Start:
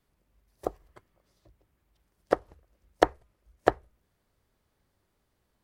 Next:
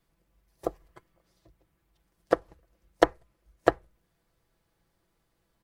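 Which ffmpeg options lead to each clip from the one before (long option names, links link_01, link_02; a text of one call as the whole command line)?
ffmpeg -i in.wav -af "aecho=1:1:6:0.49" out.wav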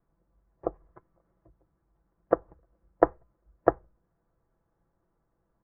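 ffmpeg -i in.wav -af "lowpass=frequency=1400:width=0.5412,lowpass=frequency=1400:width=1.3066" out.wav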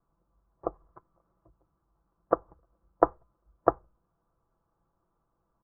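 ffmpeg -i in.wav -af "firequalizer=gain_entry='entry(530,0);entry(1200,8);entry(1800,-7)':delay=0.05:min_phase=1,volume=-2.5dB" out.wav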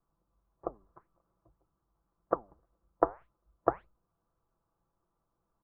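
ffmpeg -i in.wav -af "flanger=delay=2.2:depth=8.3:regen=84:speed=1.8:shape=sinusoidal" out.wav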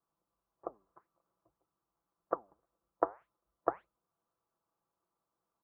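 ffmpeg -i in.wav -af "highpass=frequency=370:poles=1,volume=-3dB" out.wav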